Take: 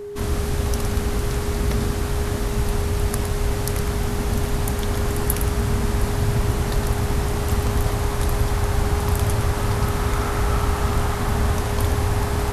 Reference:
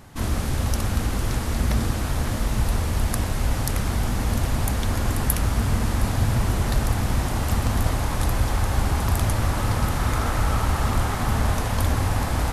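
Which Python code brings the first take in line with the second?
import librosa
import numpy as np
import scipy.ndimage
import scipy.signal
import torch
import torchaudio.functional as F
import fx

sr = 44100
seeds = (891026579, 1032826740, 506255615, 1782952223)

y = fx.notch(x, sr, hz=410.0, q=30.0)
y = fx.fix_echo_inverse(y, sr, delay_ms=112, level_db=-8.5)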